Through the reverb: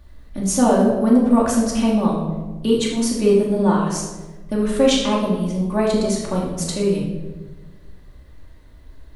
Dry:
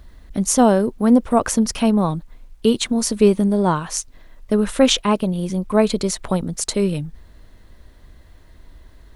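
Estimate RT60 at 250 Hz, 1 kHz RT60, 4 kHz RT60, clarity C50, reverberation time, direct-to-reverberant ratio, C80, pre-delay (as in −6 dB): 1.6 s, 1.0 s, 0.75 s, 2.5 dB, 1.2 s, −4.5 dB, 5.5 dB, 3 ms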